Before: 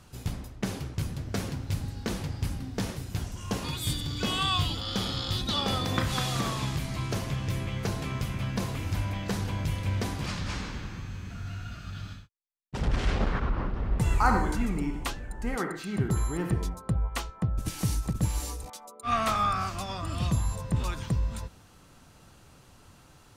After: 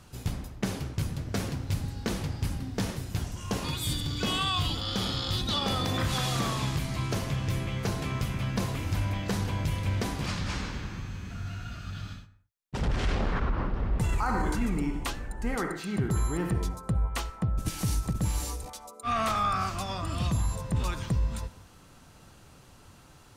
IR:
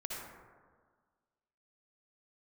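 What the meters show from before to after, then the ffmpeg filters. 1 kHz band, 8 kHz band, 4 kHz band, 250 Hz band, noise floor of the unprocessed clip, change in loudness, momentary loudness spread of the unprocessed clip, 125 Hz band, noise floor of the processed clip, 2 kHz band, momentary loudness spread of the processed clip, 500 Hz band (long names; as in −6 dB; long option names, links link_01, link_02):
−1.0 dB, +0.5 dB, 0.0 dB, 0.0 dB, −55 dBFS, 0.0 dB, 10 LU, 0.0 dB, −54 dBFS, −0.5 dB, 8 LU, 0.0 dB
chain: -filter_complex "[0:a]alimiter=limit=-20.5dB:level=0:latency=1:release=16,asplit=2[link_01][link_02];[1:a]atrim=start_sample=2205,afade=type=out:start_time=0.28:duration=0.01,atrim=end_sample=12789[link_03];[link_02][link_03]afir=irnorm=-1:irlink=0,volume=-14dB[link_04];[link_01][link_04]amix=inputs=2:normalize=0"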